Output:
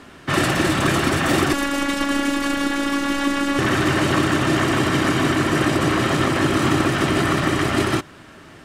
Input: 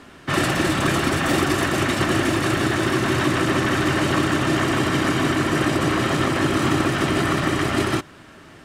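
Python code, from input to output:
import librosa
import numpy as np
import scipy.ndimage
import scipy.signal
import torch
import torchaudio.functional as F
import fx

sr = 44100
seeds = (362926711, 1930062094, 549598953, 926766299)

y = fx.robotise(x, sr, hz=281.0, at=(1.53, 3.59))
y = y * 10.0 ** (1.5 / 20.0)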